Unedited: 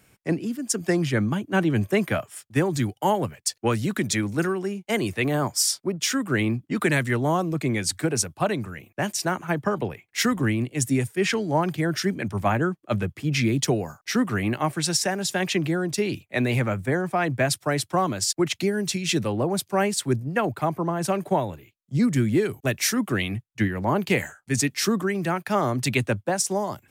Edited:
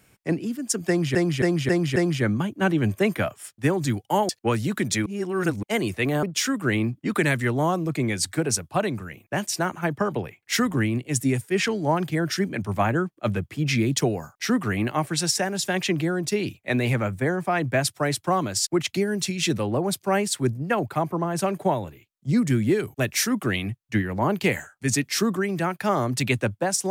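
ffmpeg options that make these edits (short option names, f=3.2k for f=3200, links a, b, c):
-filter_complex "[0:a]asplit=9[a][b][c][d][e][f][g][h][i];[a]atrim=end=1.152[j];[b]atrim=start=0.878:end=1.152[k];[c]atrim=start=0.878:end=1.152[l];[d]atrim=start=0.878:end=1.152[m];[e]atrim=start=0.878:end=3.212[n];[f]atrim=start=3.478:end=4.252[o];[g]atrim=start=4.248:end=4.822,asetpts=PTS-STARTPTS,areverse[p];[h]atrim=start=4.818:end=5.422[q];[i]atrim=start=5.888[r];[j][k]acrossfade=d=0.004:c1=hsin:c2=hsin[s];[s][l]acrossfade=d=0.004:c1=hsin:c2=hsin[t];[t][m]acrossfade=d=0.004:c1=hsin:c2=hsin[u];[u][n]acrossfade=d=0.004:c1=hsin:c2=hsin[v];[v][o]acrossfade=d=0.004:c1=hsin:c2=hsin[w];[w][p]acrossfade=d=0.004:c1=hsin:c2=hsin[x];[x][q]acrossfade=d=0.004:c1=hsin:c2=hsin[y];[y][r]acrossfade=d=0.004:c1=hsin:c2=hsin"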